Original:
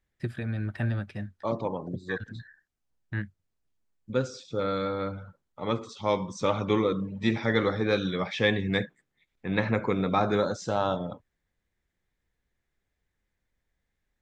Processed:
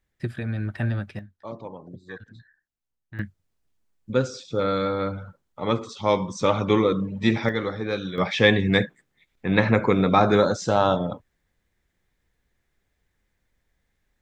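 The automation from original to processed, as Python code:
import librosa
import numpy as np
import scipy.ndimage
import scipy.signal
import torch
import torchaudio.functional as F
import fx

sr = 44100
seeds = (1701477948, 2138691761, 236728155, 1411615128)

y = fx.gain(x, sr, db=fx.steps((0.0, 3.0), (1.19, -7.0), (3.19, 5.0), (7.49, -2.0), (8.18, 7.0)))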